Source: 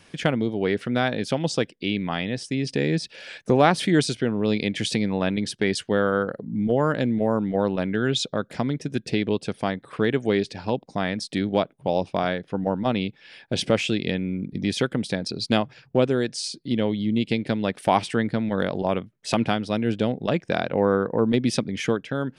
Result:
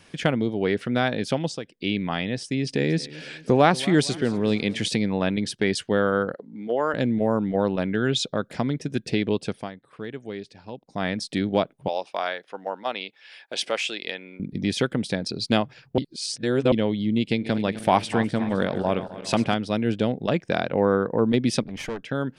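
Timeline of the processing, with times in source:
1.38–1.86 s: dip -12.5 dB, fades 0.24 s
2.44–4.88 s: modulated delay 230 ms, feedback 50%, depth 85 cents, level -19 dB
6.34–6.94 s: band-pass 410–7100 Hz
9.49–11.06 s: dip -12.5 dB, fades 0.21 s
11.88–14.40 s: high-pass 660 Hz
15.98–16.72 s: reverse
17.28–19.54 s: backward echo that repeats 129 ms, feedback 67%, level -13 dB
21.62–22.03 s: valve stage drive 26 dB, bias 0.8

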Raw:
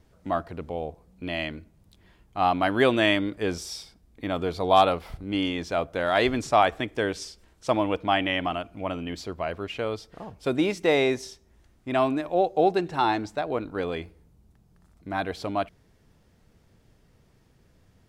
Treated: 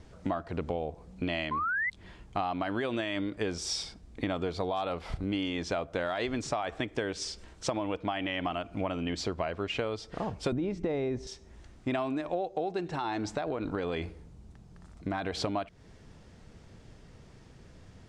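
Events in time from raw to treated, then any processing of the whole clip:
1.51–1.90 s: painted sound rise 1–2.1 kHz -29 dBFS
10.52–11.27 s: tilt EQ -4 dB/octave
12.95–15.37 s: compression, threshold -32 dBFS
whole clip: low-pass 8.6 kHz 24 dB/octave; peak limiter -15 dBFS; compression 12:1, threshold -36 dBFS; trim +7.5 dB

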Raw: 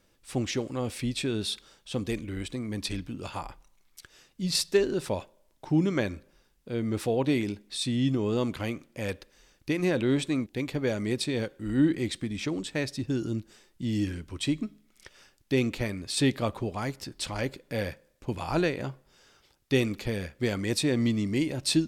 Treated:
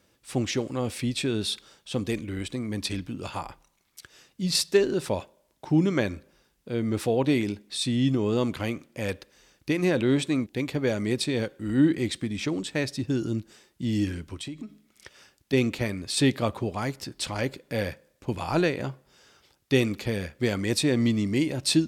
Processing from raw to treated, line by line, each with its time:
14.34–15.53 s: compression, threshold -36 dBFS
whole clip: high-pass 58 Hz; trim +2.5 dB

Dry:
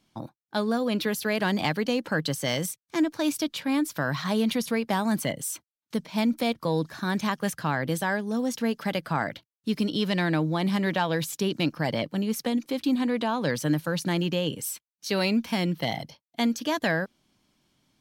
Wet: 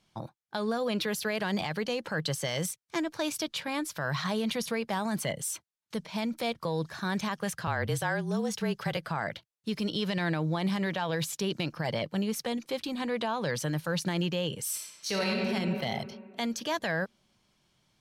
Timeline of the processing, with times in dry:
7.67–8.97 s: frequency shift -32 Hz
14.64–15.39 s: reverb throw, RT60 1.9 s, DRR -3.5 dB
whole clip: Bessel low-pass 11 kHz, order 2; peak limiter -19.5 dBFS; peaking EQ 270 Hz -12 dB 0.41 oct

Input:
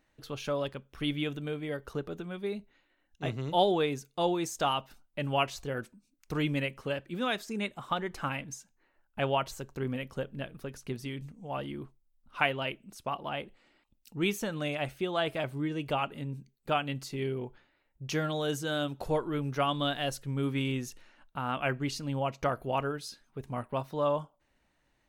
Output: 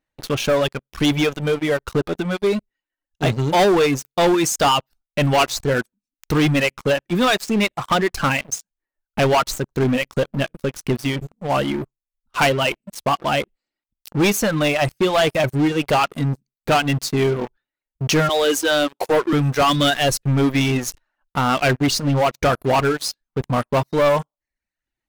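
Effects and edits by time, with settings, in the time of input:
18.29–19.33 s: high-pass 290 Hz 24 dB/octave
whole clip: reverb removal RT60 0.97 s; waveshaping leveller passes 5

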